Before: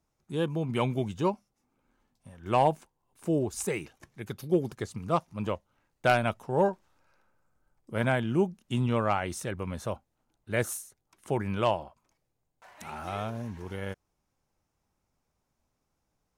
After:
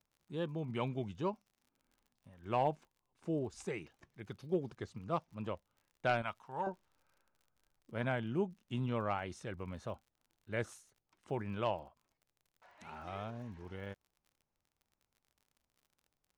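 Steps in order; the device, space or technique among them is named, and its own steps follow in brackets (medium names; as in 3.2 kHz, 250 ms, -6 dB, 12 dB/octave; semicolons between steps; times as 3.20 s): 6.22–6.67 s: resonant low shelf 690 Hz -9.5 dB, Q 1.5; lo-fi chain (low-pass 5.1 kHz 12 dB/octave; wow and flutter; crackle 44 per s -47 dBFS); trim -9 dB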